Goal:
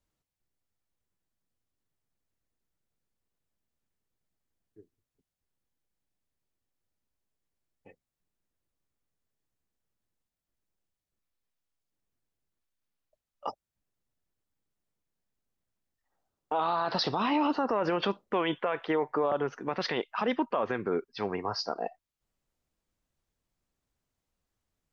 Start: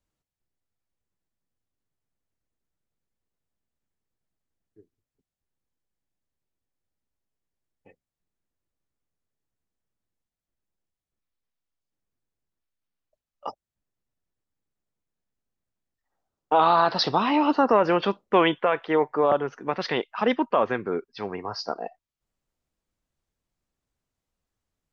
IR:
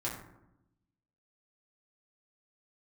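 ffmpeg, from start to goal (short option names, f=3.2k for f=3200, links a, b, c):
-af "alimiter=limit=-19dB:level=0:latency=1:release=69"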